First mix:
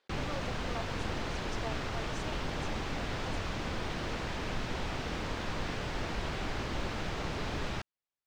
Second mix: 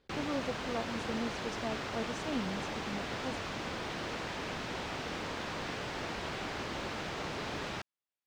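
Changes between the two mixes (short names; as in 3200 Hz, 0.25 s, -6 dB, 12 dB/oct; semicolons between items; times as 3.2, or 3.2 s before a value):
speech: remove HPF 710 Hz 12 dB/oct; master: add HPF 210 Hz 6 dB/oct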